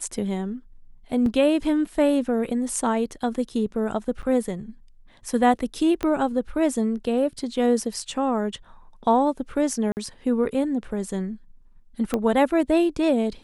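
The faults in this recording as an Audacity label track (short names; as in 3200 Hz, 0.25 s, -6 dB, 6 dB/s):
1.260000	1.260000	gap 2.5 ms
4.220000	4.230000	gap 8.6 ms
6.030000	6.030000	pop -12 dBFS
9.920000	9.970000	gap 49 ms
12.140000	12.140000	pop -11 dBFS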